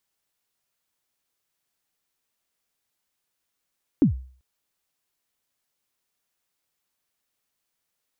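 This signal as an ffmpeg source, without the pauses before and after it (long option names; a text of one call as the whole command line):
ffmpeg -f lavfi -i "aevalsrc='0.299*pow(10,-3*t/0.45)*sin(2*PI*(330*0.114/log(64/330)*(exp(log(64/330)*min(t,0.114)/0.114)-1)+64*max(t-0.114,0)))':duration=0.39:sample_rate=44100" out.wav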